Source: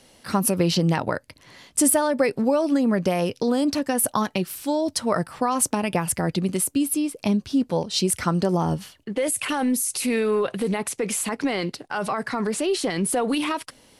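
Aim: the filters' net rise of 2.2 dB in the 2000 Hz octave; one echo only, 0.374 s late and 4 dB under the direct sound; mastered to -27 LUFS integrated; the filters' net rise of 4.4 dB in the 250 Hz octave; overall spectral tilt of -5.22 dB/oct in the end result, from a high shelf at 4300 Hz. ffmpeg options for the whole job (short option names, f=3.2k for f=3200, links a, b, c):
-af "equalizer=f=250:t=o:g=5.5,equalizer=f=2k:t=o:g=3.5,highshelf=f=4.3k:g=-4,aecho=1:1:374:0.631,volume=-7dB"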